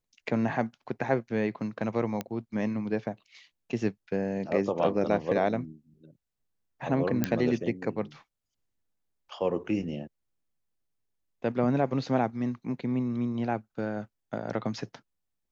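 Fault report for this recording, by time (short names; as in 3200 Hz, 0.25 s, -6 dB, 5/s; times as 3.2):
2.21 pop -17 dBFS
7.24 pop -11 dBFS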